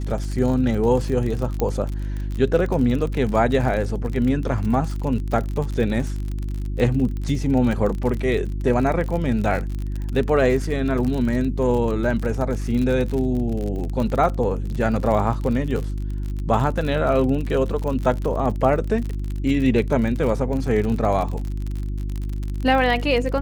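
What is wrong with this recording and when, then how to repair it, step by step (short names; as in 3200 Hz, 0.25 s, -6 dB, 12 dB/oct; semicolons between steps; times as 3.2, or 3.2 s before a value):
crackle 46/s -26 dBFS
hum 50 Hz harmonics 7 -26 dBFS
1.6 pop -10 dBFS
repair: de-click; de-hum 50 Hz, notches 7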